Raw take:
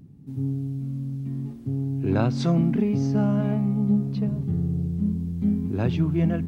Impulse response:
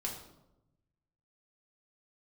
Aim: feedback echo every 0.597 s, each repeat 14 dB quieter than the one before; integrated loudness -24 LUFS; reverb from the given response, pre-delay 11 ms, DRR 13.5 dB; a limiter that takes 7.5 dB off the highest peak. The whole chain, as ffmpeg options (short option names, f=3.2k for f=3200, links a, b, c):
-filter_complex "[0:a]alimiter=limit=-18dB:level=0:latency=1,aecho=1:1:597|1194:0.2|0.0399,asplit=2[a][b];[1:a]atrim=start_sample=2205,adelay=11[c];[b][c]afir=irnorm=-1:irlink=0,volume=-14.5dB[d];[a][d]amix=inputs=2:normalize=0,volume=2.5dB"